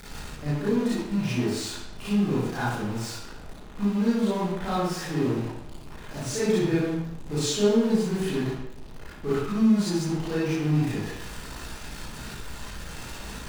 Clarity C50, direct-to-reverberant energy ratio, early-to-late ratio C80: −5.0 dB, −11.0 dB, 2.0 dB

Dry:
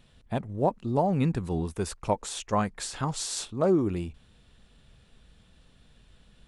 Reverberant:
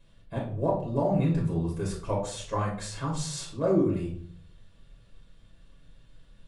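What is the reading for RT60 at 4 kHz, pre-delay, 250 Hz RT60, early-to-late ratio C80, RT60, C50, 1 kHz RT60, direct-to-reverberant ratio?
0.35 s, 4 ms, 0.75 s, 11.0 dB, 0.55 s, 6.0 dB, 0.45 s, −4.0 dB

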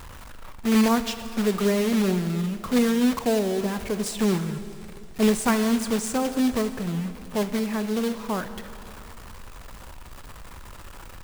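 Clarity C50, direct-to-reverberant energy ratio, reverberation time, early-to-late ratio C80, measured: 11.0 dB, 10.0 dB, 2.9 s, 11.5 dB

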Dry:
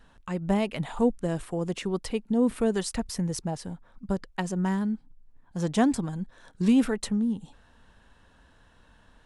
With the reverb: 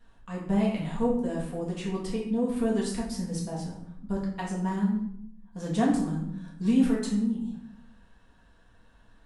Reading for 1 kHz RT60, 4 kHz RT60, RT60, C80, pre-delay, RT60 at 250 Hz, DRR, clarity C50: 0.65 s, 0.50 s, 0.70 s, 7.5 dB, 4 ms, 1.1 s, −5.0 dB, 4.0 dB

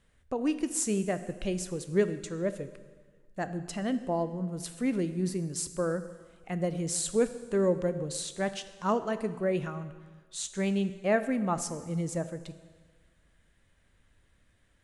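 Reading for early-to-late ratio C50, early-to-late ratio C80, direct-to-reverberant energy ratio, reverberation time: 12.5 dB, 14.0 dB, 11.0 dB, 1.5 s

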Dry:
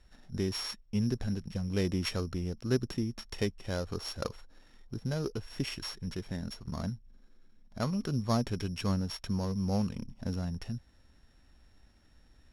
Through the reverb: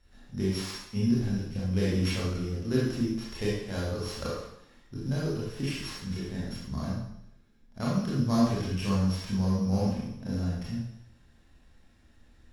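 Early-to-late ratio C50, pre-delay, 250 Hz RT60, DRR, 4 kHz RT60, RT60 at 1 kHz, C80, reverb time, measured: −0.5 dB, 23 ms, 0.75 s, −7.0 dB, 0.70 s, 0.75 s, 3.0 dB, 0.75 s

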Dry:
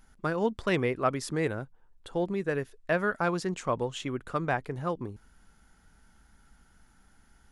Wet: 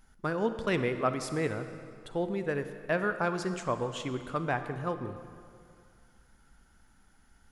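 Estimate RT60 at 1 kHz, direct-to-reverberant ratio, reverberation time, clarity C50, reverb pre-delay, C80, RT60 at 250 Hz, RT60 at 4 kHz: 2.3 s, 9.0 dB, 2.3 s, 9.5 dB, 35 ms, 10.5 dB, 2.3 s, 1.8 s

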